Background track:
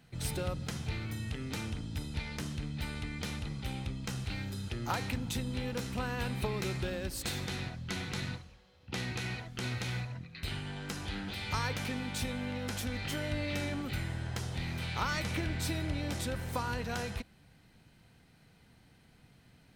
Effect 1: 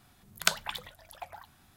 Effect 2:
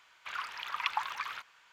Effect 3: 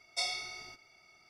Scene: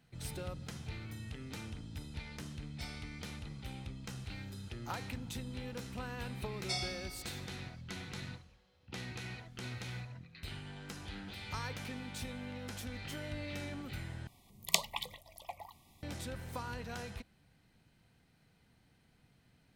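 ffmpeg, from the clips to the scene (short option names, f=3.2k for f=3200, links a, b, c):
-filter_complex "[3:a]asplit=2[a][b];[0:a]volume=-7dB[c];[b]aecho=1:1:5.3:0.39[d];[1:a]asuperstop=centerf=1500:order=20:qfactor=2.1[e];[c]asplit=2[f][g];[f]atrim=end=14.274[h];[e]atrim=end=1.76,asetpts=PTS-STARTPTS,volume=-2dB[i];[g]atrim=start=16.026[j];[a]atrim=end=1.29,asetpts=PTS-STARTPTS,volume=-16.5dB,afade=t=in:d=0.004:c=hsin,afade=t=out:st=1.286:d=0.004:c=hsin,adelay=2620[k];[d]atrim=end=1.29,asetpts=PTS-STARTPTS,volume=-4dB,afade=t=in:d=0.004:c=hsin,afade=t=out:st=1.286:d=0.004:c=hsin,adelay=6520[l];[h][i]acrossfade=d=0.004:c1=hsin:c2=hsin[m];[m][j]acrossfade=d=0.004:c1=hsin:c2=hsin[n];[n][k][l]amix=inputs=3:normalize=0"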